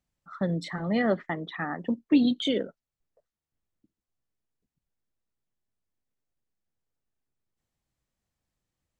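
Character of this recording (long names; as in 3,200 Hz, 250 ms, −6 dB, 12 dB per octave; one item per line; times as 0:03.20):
background noise floor −91 dBFS
spectral slope −5.0 dB per octave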